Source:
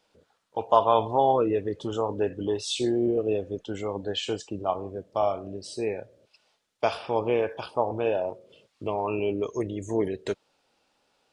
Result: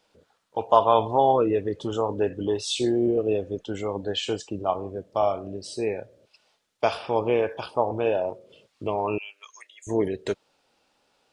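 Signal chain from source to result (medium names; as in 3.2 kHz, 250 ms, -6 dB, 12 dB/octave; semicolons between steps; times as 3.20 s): 9.18–9.87 s: high-pass 1.4 kHz 24 dB/octave; trim +2 dB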